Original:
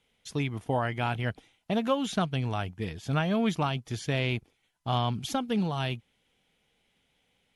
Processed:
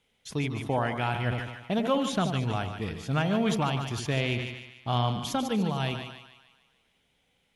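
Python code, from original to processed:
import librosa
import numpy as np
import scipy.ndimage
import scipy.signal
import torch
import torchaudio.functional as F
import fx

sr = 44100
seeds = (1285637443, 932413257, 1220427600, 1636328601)

y = fx.dmg_crackle(x, sr, seeds[0], per_s=65.0, level_db=-49.0, at=(3.28, 4.34), fade=0.02)
y = fx.echo_split(y, sr, split_hz=940.0, low_ms=81, high_ms=148, feedback_pct=52, wet_db=-8.5)
y = fx.sustainer(y, sr, db_per_s=61.0)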